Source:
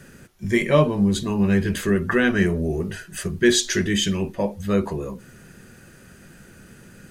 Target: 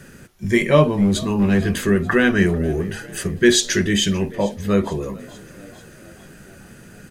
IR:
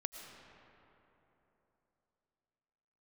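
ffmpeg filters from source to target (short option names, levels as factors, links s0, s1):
-filter_complex "[0:a]asettb=1/sr,asplit=3[s0][s1][s2];[s0]atrim=end=0.834[s3];[s1]atrim=start=0.83:end=1.62,asetpts=PTS-STARTPTS,afade=t=in:d=0.004:c=qsin,afade=t=out:st=0.786:d=0.004:c=qsin,aeval=exprs='clip(val(0),-1,0.168)':c=same[s4];[s2]atrim=start=1.616[s5];[s3][s4]acrossfade=d=0.004:c1=hsin:c2=qsin[s6];[s6][s5]acrossfade=d=0.004:c1=qsin:c2=hsin,asplit=6[s7][s8][s9][s10][s11][s12];[s8]adelay=443,afreqshift=45,volume=0.0794[s13];[s9]adelay=886,afreqshift=90,volume=0.049[s14];[s10]adelay=1329,afreqshift=135,volume=0.0305[s15];[s11]adelay=1772,afreqshift=180,volume=0.0188[s16];[s12]adelay=2215,afreqshift=225,volume=0.0117[s17];[s7][s13][s14][s15][s16][s17]amix=inputs=6:normalize=0,volume=1.41"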